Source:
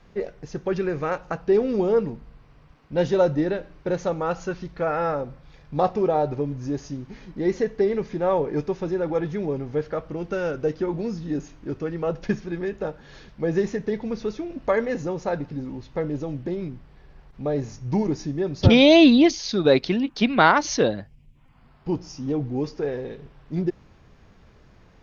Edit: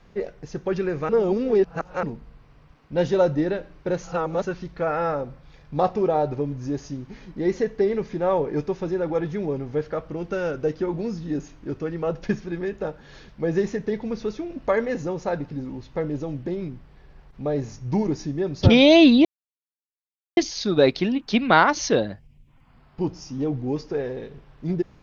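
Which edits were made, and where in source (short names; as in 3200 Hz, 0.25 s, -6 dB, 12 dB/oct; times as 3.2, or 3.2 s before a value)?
1.09–2.03 reverse
4.02–4.45 reverse
19.25 insert silence 1.12 s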